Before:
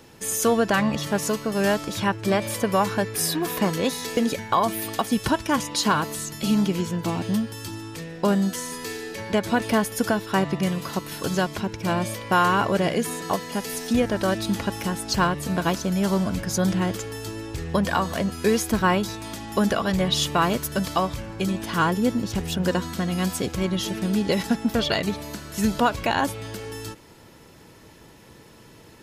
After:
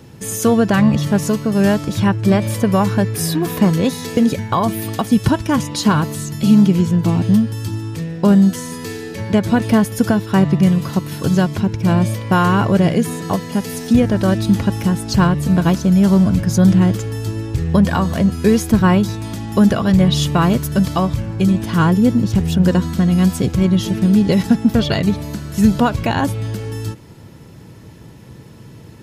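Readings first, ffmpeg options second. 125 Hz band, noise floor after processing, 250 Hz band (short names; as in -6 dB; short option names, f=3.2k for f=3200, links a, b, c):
+13.0 dB, -39 dBFS, +11.0 dB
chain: -af "equalizer=f=120:w=0.56:g=14,volume=1.5dB"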